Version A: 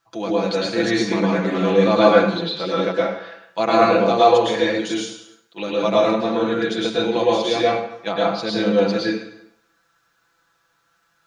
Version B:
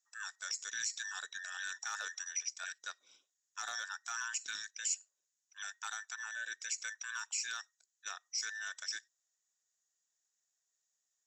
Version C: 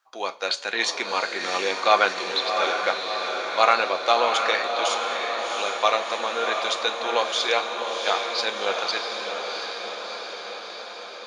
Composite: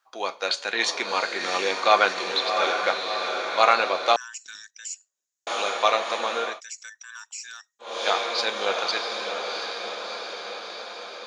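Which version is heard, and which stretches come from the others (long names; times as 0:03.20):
C
0:04.16–0:05.47: punch in from B
0:06.49–0:07.91: punch in from B, crossfade 0.24 s
not used: A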